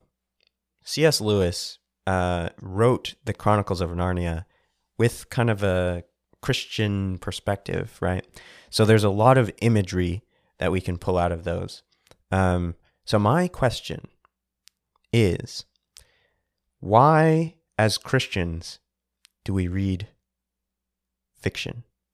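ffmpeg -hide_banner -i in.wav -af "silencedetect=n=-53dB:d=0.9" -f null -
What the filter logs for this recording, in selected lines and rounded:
silence_start: 20.12
silence_end: 21.37 | silence_duration: 1.25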